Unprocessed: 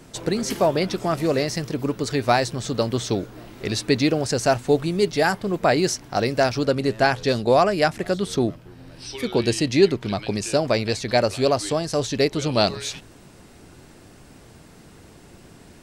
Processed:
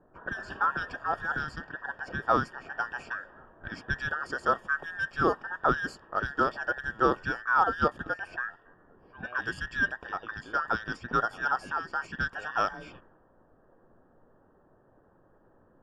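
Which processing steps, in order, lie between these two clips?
band inversion scrambler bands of 2000 Hz; low-pass opened by the level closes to 590 Hz, open at -18 dBFS; running mean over 22 samples

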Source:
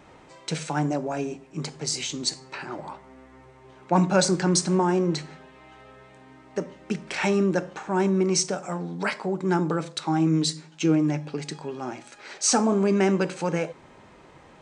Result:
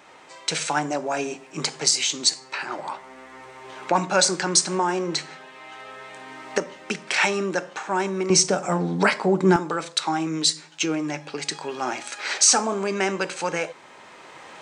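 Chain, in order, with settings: recorder AGC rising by 7 dB/s; HPF 1000 Hz 6 dB/oct, from 8.3 s 140 Hz, from 9.56 s 1100 Hz; gain +6 dB

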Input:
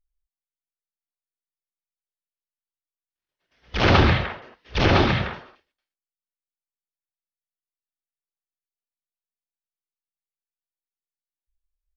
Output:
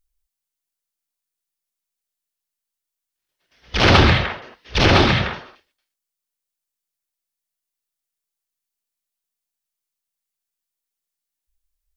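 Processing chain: high shelf 3600 Hz +8.5 dB; in parallel at -11 dB: soft clip -18.5 dBFS, distortion -9 dB; on the sum: gain +2 dB

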